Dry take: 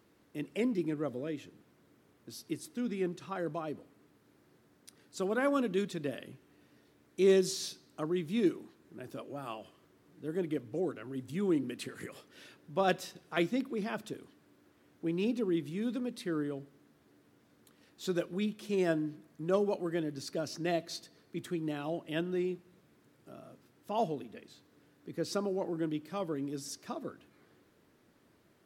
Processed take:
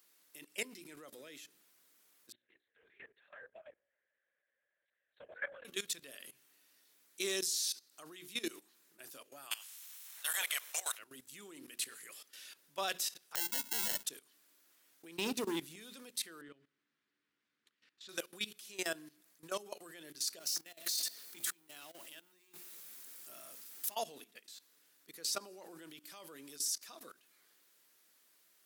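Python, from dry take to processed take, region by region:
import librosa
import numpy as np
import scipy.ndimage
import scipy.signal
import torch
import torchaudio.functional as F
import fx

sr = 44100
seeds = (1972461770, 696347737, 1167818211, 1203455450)

y = fx.chain(x, sr, fx.double_bandpass(hz=1000.0, octaves=1.5),
    fx.lpc_vocoder(seeds[0], excitation='whisper', order=10), at=(2.32, 5.65))
y = fx.spec_clip(y, sr, under_db=28, at=(9.5, 10.97), fade=0.02)
y = fx.highpass(y, sr, hz=670.0, slope=12, at=(9.5, 10.97), fade=0.02)
y = fx.notch(y, sr, hz=4700.0, q=11.0, at=(9.5, 10.97), fade=0.02)
y = fx.chain(y, sr, fx.ripple_eq(per_octave=1.3, db=6),
    fx.sample_hold(seeds[1], rate_hz=1200.0, jitter_pct=0),
    fx.band_squash(depth_pct=40), at=(13.35, 14.04))
y = fx.chain(y, sr, fx.low_shelf(hz=450.0, db=10.5),
    fx.leveller(passes=1), at=(15.18, 15.76))
y = fx.chain(y, sr, fx.lowpass(hz=2100.0, slope=12),
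    fx.peak_eq(hz=690.0, db=-13.0, octaves=1.5), at=(16.41, 18.09))
y = fx.chain(y, sr, fx.law_mismatch(coded='mu'),
    fx.high_shelf(hz=6200.0, db=5.5),
    fx.over_compress(threshold_db=-43.0, ratio=-1.0), at=(20.39, 23.96))
y = np.diff(y, prepend=0.0)
y = fx.hum_notches(y, sr, base_hz=60, count=7)
y = fx.level_steps(y, sr, step_db=17)
y = y * librosa.db_to_amplitude(15.5)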